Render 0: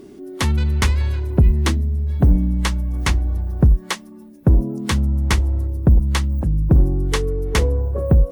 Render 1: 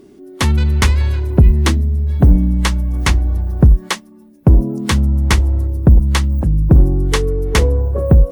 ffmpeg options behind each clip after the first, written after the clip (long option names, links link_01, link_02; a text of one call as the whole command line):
ffmpeg -i in.wav -af "agate=range=-7dB:threshold=-28dB:ratio=16:detection=peak,volume=4.5dB" out.wav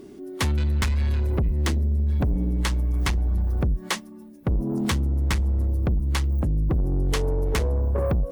ffmpeg -i in.wav -af "acompressor=threshold=-15dB:ratio=6,asoftclip=type=tanh:threshold=-18.5dB" out.wav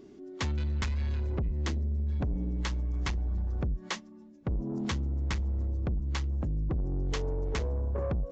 ffmpeg -i in.wav -af "aresample=16000,aresample=44100,volume=-8dB" out.wav